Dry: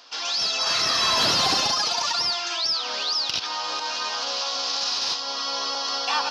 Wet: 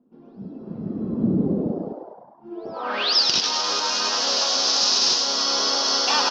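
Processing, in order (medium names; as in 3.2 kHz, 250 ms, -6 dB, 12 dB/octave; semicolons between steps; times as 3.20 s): low-pass sweep 190 Hz -> 6.3 kHz, 2.44–3.22 s; 1.92–2.44 s: inverted gate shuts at -40 dBFS, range -25 dB; small resonant body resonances 230/370 Hz, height 15 dB, ringing for 45 ms; frequency-shifting echo 102 ms, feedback 59%, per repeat +98 Hz, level -6 dB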